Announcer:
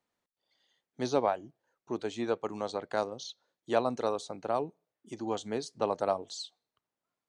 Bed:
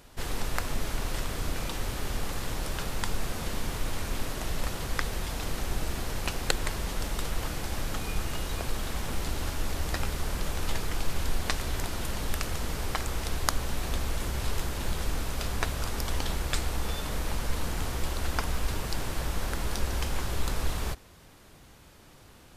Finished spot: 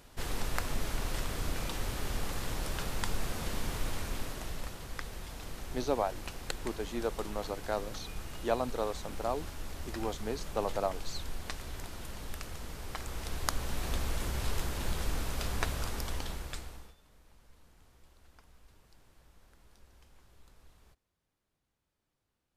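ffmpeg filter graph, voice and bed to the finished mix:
ffmpeg -i stem1.wav -i stem2.wav -filter_complex "[0:a]adelay=4750,volume=-3dB[link_01];[1:a]volume=4.5dB,afade=type=out:start_time=3.83:duration=0.95:silence=0.421697,afade=type=in:start_time=12.83:duration=1.09:silence=0.421697,afade=type=out:start_time=15.73:duration=1.22:silence=0.0421697[link_02];[link_01][link_02]amix=inputs=2:normalize=0" out.wav

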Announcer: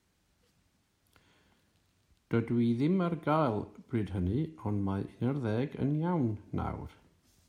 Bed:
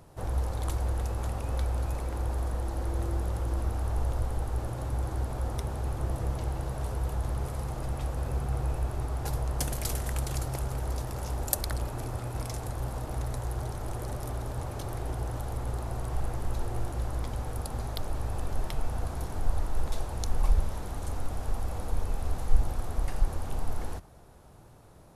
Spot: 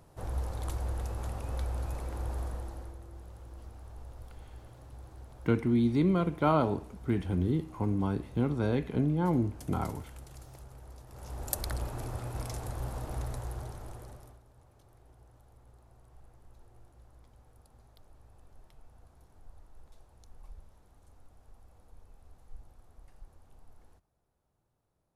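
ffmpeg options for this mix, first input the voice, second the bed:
ffmpeg -i stem1.wav -i stem2.wav -filter_complex "[0:a]adelay=3150,volume=2.5dB[link_01];[1:a]volume=10dB,afade=type=out:start_time=2.41:duration=0.58:silence=0.223872,afade=type=in:start_time=11.07:duration=0.61:silence=0.188365,afade=type=out:start_time=13.19:duration=1.22:silence=0.0749894[link_02];[link_01][link_02]amix=inputs=2:normalize=0" out.wav

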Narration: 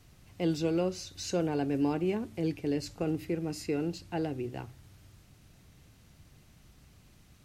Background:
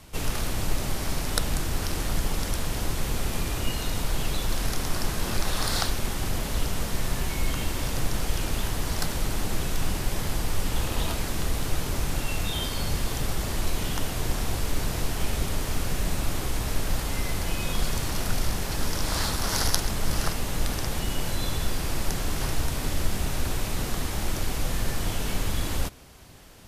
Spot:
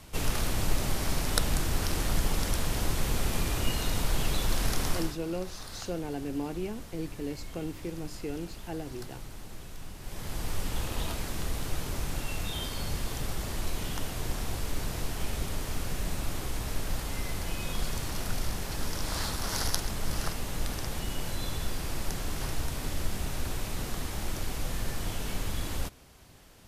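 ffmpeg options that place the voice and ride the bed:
ffmpeg -i stem1.wav -i stem2.wav -filter_complex "[0:a]adelay=4550,volume=-5dB[link_01];[1:a]volume=10dB,afade=type=out:start_time=4.89:duration=0.28:silence=0.16788,afade=type=in:start_time=9.98:duration=0.51:silence=0.281838[link_02];[link_01][link_02]amix=inputs=2:normalize=0" out.wav

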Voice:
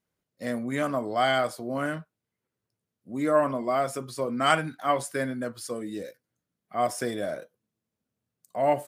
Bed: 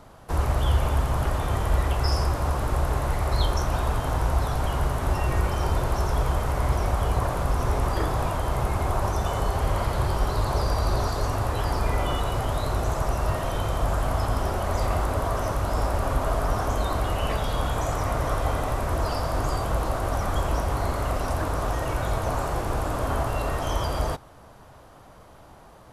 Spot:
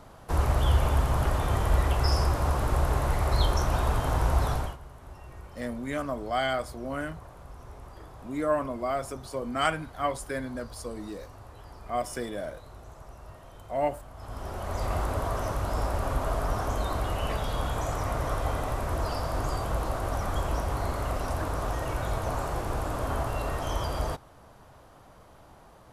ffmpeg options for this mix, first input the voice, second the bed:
ffmpeg -i stem1.wav -i stem2.wav -filter_complex "[0:a]adelay=5150,volume=-4dB[link_01];[1:a]volume=16.5dB,afade=type=out:start_time=4.51:duration=0.26:silence=0.0944061,afade=type=in:start_time=14.15:duration=0.84:silence=0.133352[link_02];[link_01][link_02]amix=inputs=2:normalize=0" out.wav

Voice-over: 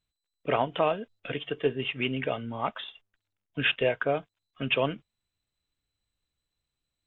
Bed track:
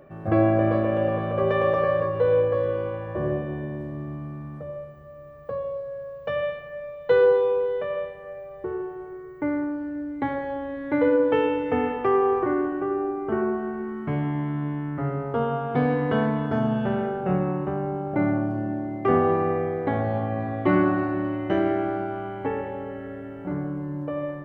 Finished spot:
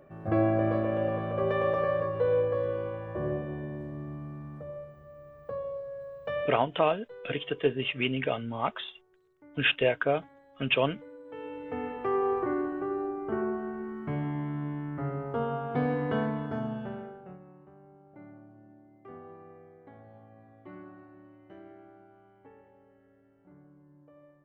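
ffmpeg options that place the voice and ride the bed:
ffmpeg -i stem1.wav -i stem2.wav -filter_complex "[0:a]adelay=6000,volume=0.5dB[link_01];[1:a]volume=17dB,afade=type=out:start_time=6.42:duration=0.22:silence=0.0707946,afade=type=in:start_time=11.24:duration=1.07:silence=0.0749894,afade=type=out:start_time=16.14:duration=1.24:silence=0.0891251[link_02];[link_01][link_02]amix=inputs=2:normalize=0" out.wav

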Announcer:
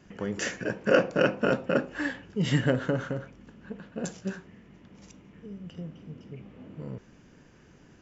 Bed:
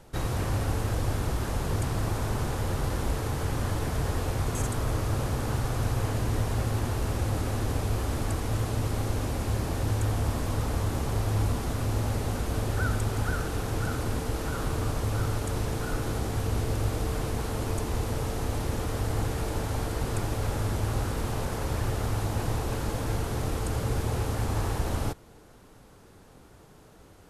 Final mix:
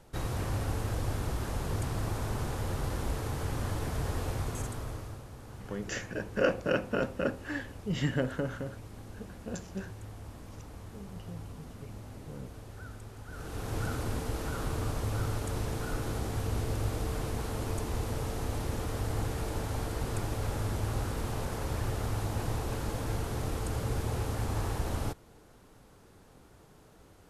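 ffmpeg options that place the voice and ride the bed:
ffmpeg -i stem1.wav -i stem2.wav -filter_complex "[0:a]adelay=5500,volume=-5.5dB[link_01];[1:a]volume=9.5dB,afade=type=out:start_time=4.31:duration=0.92:silence=0.211349,afade=type=in:start_time=13.28:duration=0.5:silence=0.199526[link_02];[link_01][link_02]amix=inputs=2:normalize=0" out.wav

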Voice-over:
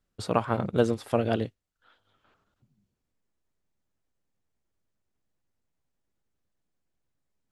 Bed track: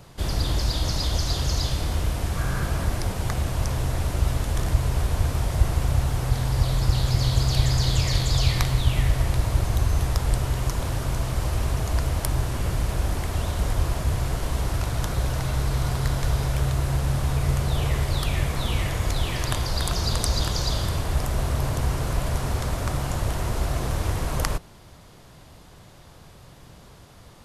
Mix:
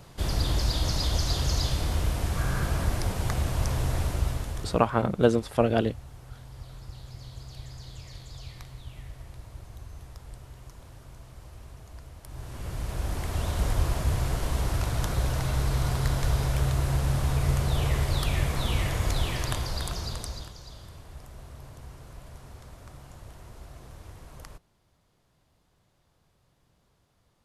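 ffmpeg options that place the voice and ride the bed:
ffmpeg -i stem1.wav -i stem2.wav -filter_complex "[0:a]adelay=4450,volume=2.5dB[link_01];[1:a]volume=17.5dB,afade=type=out:start_time=3.98:duration=0.9:silence=0.105925,afade=type=in:start_time=12.24:duration=1.36:silence=0.105925,afade=type=out:start_time=19.18:duration=1.37:silence=0.11885[link_02];[link_01][link_02]amix=inputs=2:normalize=0" out.wav

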